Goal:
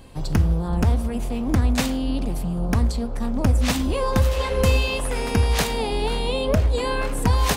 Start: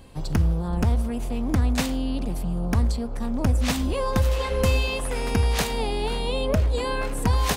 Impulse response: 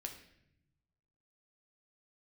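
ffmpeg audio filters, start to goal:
-af "flanger=delay=6:depth=6.1:regen=-83:speed=1.8:shape=triangular,volume=7dB"

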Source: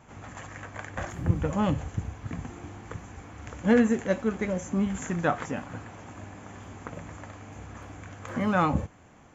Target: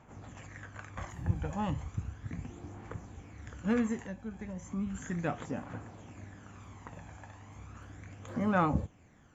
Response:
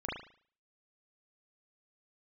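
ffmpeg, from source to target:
-filter_complex "[0:a]asettb=1/sr,asplit=3[a][b][c];[a]atrim=end=4.054[d];[b]atrim=start=4.05:end=5.06,asetpts=PTS-STARTPTS,afade=t=in:d=0.004:c=qsin,afade=t=out:st=1.006:d=0.004:c=qsin,acrossover=split=250[e][f];[f]acompressor=threshold=-36dB:ratio=5[g];[e][g]amix=inputs=2:normalize=0[h];[c]atrim=start=5.056[i];[d][h]acrossfade=d=0.004:c1=hsin:c2=qsin[j];[j][i]acrossfade=d=0.004:c1=qsin:c2=hsin,aphaser=in_gain=1:out_gain=1:delay=1.3:decay=0.46:speed=0.35:type=triangular,volume=-8.5dB"

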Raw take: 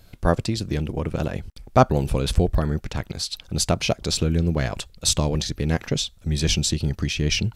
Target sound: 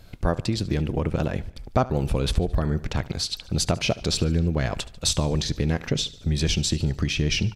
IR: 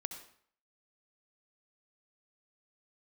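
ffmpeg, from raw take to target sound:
-filter_complex "[0:a]highshelf=f=7.3k:g=-7.5,acompressor=threshold=-23dB:ratio=3,asplit=2[a][b];[b]aecho=0:1:73|146|219|292:0.112|0.0595|0.0315|0.0167[c];[a][c]amix=inputs=2:normalize=0,volume=3dB"

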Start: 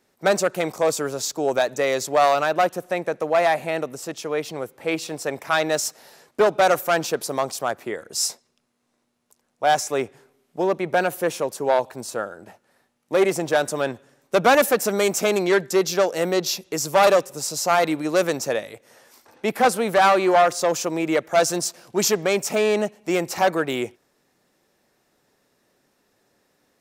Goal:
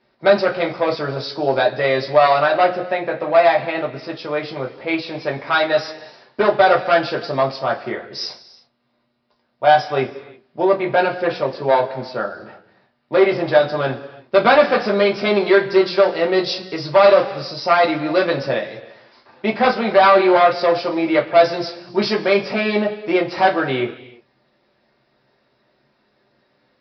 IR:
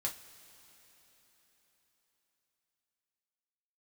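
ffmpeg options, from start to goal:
-filter_complex "[0:a]aresample=11025,aresample=44100[a];[1:a]atrim=start_sample=2205,afade=t=out:st=0.45:d=0.01,atrim=end_sample=20286,asetrate=48510,aresample=44100[b];[a][b]afir=irnorm=-1:irlink=0,alimiter=level_in=5.5dB:limit=-1dB:release=50:level=0:latency=1,volume=-1dB"

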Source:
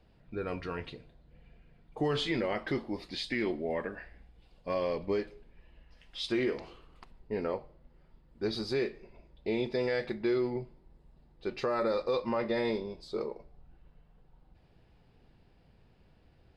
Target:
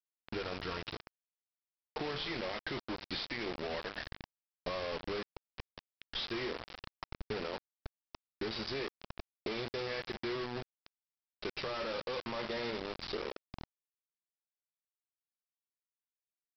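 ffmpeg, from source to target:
-af "equalizer=f=240:t=o:w=1.8:g=-4.5,bandreject=f=50:t=h:w=6,bandreject=f=100:t=h:w=6,bandreject=f=150:t=h:w=6,bandreject=f=200:t=h:w=6,bandreject=f=250:t=h:w=6,alimiter=level_in=5dB:limit=-24dB:level=0:latency=1:release=18,volume=-5dB,acompressor=threshold=-46dB:ratio=8,aresample=11025,acrusher=bits=7:mix=0:aa=0.000001,aresample=44100,volume=9dB"

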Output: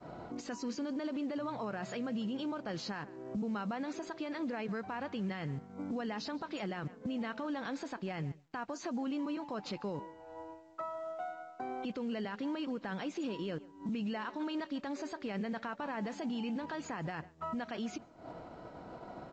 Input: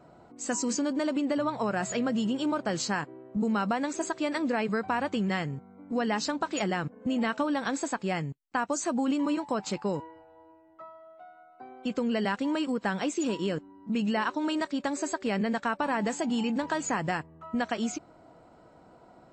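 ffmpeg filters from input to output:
-filter_complex "[0:a]acompressor=threshold=-46dB:ratio=4,asplit=2[a][b];[b]adelay=147,lowpass=f=3.3k:p=1,volume=-20dB,asplit=2[c][d];[d]adelay=147,lowpass=f=3.3k:p=1,volume=0.29[e];[a][c][e]amix=inputs=3:normalize=0,acontrast=70,agate=range=-33dB:threshold=-44dB:ratio=3:detection=peak,atempo=1,alimiter=level_in=10dB:limit=-24dB:level=0:latency=1:release=25,volume=-10dB,lowpass=f=5.1k:w=0.5412,lowpass=f=5.1k:w=1.3066,volume=3.5dB" -ar 16000 -c:a pcm_mulaw

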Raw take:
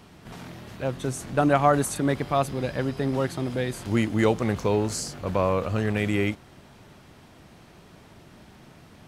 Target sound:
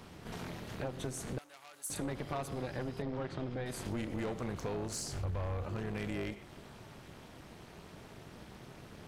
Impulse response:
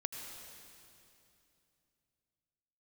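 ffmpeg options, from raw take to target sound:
-filter_complex "[0:a]tremolo=f=250:d=0.857,asplit=2[a][b];[1:a]atrim=start_sample=2205,afade=t=out:st=0.23:d=0.01,atrim=end_sample=10584,asetrate=52920,aresample=44100[c];[b][c]afir=irnorm=-1:irlink=0,volume=-7.5dB[d];[a][d]amix=inputs=2:normalize=0,asoftclip=type=tanh:threshold=-20.5dB,asettb=1/sr,asplit=3[e][f][g];[e]atrim=end=3.024[h];[f]atrim=start=3.02:end=3.66,asetpts=PTS-STARTPTS,afade=t=in:d=0.004:c=qsin,afade=t=out:st=0.636:d=0.004:c=qsin,lowpass=3.8k[i];[g]atrim=start=3.656[j];[h][i]acrossfade=d=0.004:c1=hsin:c2=qsin[k];[k][j]acrossfade=d=0.004:c1=qsin:c2=hsin,asettb=1/sr,asplit=3[l][m][n];[l]atrim=end=5.124[o];[m]atrim=start=5.12:end=5.67,asetpts=PTS-STARTPTS,afade=t=in:d=0.004:c=qsin,afade=t=out:st=0.546:d=0.004:c=qsin,lowshelf=f=130:t=q:w=1.5:g=11.5[p];[n]atrim=start=5.666[q];[o][p]acrossfade=d=0.004:c1=hsin:c2=qsin[r];[r][q]acrossfade=d=0.004:c1=qsin:c2=hsin,acompressor=threshold=-36dB:ratio=4,asettb=1/sr,asplit=3[s][t][u];[s]atrim=end=1.384[v];[t]atrim=start=1.38:end=1.9,asetpts=PTS-STARTPTS,afade=t=in:d=0.004:c=qsin,afade=t=out:st=0.516:d=0.004:c=qsin,aderivative[w];[u]atrim=start=1.896[x];[v][w]acrossfade=d=0.004:c1=hsin:c2=qsin[y];[y][x]acrossfade=d=0.004:c1=qsin:c2=hsin"

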